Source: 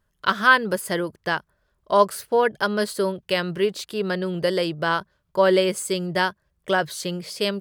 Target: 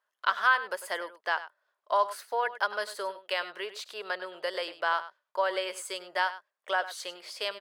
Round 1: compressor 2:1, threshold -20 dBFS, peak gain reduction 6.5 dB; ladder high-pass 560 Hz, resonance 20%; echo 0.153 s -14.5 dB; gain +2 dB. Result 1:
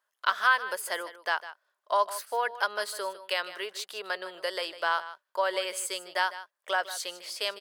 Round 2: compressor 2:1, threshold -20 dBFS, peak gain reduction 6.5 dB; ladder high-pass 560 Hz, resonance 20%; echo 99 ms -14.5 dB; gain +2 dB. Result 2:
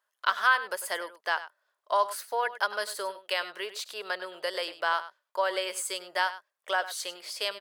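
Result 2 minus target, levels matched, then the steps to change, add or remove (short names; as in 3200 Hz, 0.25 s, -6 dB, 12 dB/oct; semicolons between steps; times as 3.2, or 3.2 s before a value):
8000 Hz band +6.0 dB
add after ladder high-pass: high shelf 5500 Hz -9.5 dB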